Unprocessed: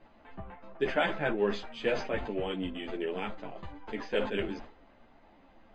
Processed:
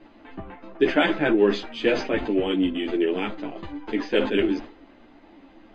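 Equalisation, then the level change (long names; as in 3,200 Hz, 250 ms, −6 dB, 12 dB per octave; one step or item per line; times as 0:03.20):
high-frequency loss of the air 87 metres
parametric band 310 Hz +14 dB 0.72 octaves
high-shelf EQ 2,000 Hz +11 dB
+3.0 dB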